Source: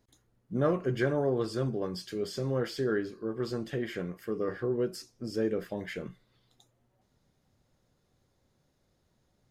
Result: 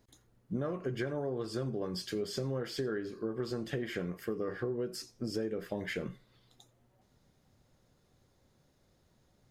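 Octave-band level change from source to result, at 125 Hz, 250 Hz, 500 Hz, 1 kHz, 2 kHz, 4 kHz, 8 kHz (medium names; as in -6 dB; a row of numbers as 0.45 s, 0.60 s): -4.5 dB, -4.0 dB, -5.0 dB, -6.0 dB, -3.0 dB, 0.0 dB, +0.5 dB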